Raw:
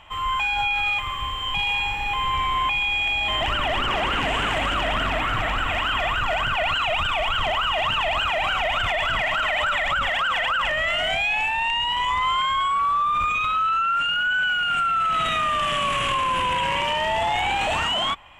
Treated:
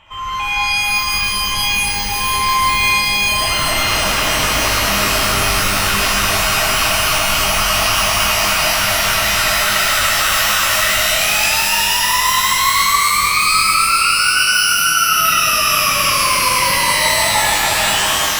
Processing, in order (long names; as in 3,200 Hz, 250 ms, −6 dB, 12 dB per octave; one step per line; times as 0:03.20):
notch filter 740 Hz, Q 12
reverb with rising layers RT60 3.8 s, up +12 semitones, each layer −2 dB, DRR −5.5 dB
level −1.5 dB